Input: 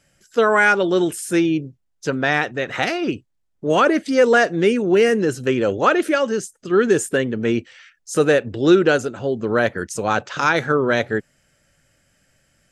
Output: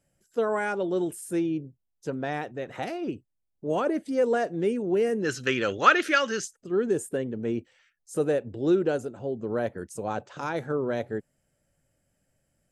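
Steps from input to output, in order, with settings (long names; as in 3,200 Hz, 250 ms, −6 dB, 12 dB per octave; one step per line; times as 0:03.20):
flat-topped bell 2,800 Hz −8.5 dB 2.8 octaves, from 0:05.24 +10 dB, from 0:06.55 −9 dB
level −9 dB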